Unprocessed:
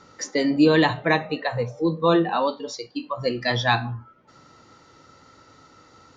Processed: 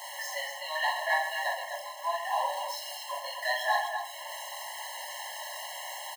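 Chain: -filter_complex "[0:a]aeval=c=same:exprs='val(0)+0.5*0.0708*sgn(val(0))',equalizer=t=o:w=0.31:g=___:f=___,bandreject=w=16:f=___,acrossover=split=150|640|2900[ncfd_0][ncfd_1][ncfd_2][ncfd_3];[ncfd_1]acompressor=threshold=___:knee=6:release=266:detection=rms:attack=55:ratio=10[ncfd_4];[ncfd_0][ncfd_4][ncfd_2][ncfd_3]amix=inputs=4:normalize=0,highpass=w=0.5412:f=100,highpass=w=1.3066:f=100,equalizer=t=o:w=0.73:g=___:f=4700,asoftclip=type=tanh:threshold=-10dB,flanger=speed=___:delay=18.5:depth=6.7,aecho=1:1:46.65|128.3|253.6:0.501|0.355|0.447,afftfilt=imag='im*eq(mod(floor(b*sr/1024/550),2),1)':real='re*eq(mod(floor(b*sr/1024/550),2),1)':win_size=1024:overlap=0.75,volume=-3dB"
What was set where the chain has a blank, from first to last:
-10.5, 500, 2100, -31dB, -4.5, 0.79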